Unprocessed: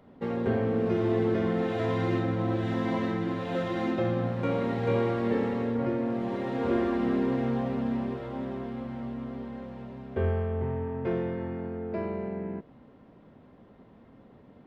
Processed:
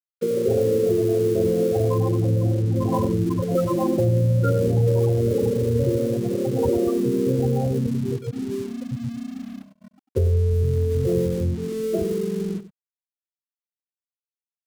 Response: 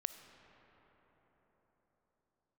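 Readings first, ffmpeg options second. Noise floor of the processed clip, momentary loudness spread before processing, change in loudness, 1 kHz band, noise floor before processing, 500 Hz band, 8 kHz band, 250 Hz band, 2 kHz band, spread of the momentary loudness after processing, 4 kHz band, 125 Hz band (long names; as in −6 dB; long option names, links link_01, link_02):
below −85 dBFS, 10 LU, +7.5 dB, +0.5 dB, −55 dBFS, +8.0 dB, can't be measured, +4.0 dB, −6.0 dB, 10 LU, +3.0 dB, +11.5 dB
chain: -filter_complex "[0:a]highpass=frequency=62:width=0.5412,highpass=frequency=62:width=1.3066,bandreject=frequency=2700:width=12,afftfilt=real='re*gte(hypot(re,im),0.1)':imag='im*gte(hypot(re,im),0.1)':win_size=1024:overlap=0.75,equalizer=frequency=980:width_type=o:width=1.8:gain=4,aecho=1:1:2.2:0.53,acrossover=split=160|650[link_01][link_02][link_03];[link_01]dynaudnorm=framelen=230:gausssize=17:maxgain=13.5dB[link_04];[link_04][link_02][link_03]amix=inputs=3:normalize=0,alimiter=limit=-18dB:level=0:latency=1:release=77,asplit=2[link_05][link_06];[link_06]acompressor=threshold=-32dB:ratio=6,volume=3dB[link_07];[link_05][link_07]amix=inputs=2:normalize=0,aeval=exprs='sgn(val(0))*max(abs(val(0))-0.00282,0)':channel_layout=same,crystalizer=i=8:c=0,aecho=1:1:96:0.2,volume=1.5dB"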